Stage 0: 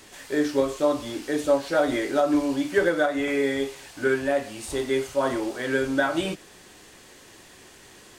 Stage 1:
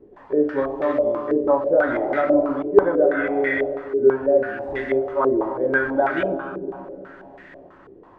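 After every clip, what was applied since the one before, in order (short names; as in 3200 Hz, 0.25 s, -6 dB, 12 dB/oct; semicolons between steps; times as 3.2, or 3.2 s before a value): digital reverb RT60 3.3 s, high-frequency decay 0.4×, pre-delay 80 ms, DRR 6 dB; stepped low-pass 6.1 Hz 410–1900 Hz; gain -1.5 dB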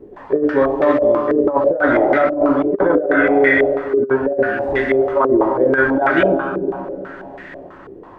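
negative-ratio compressor -20 dBFS, ratio -0.5; gain +7 dB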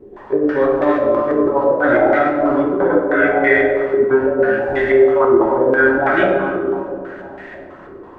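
plate-style reverb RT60 1.2 s, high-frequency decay 0.75×, DRR 0.5 dB; gain -2.5 dB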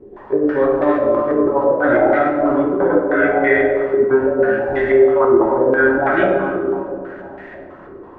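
high shelf 3300 Hz -10 dB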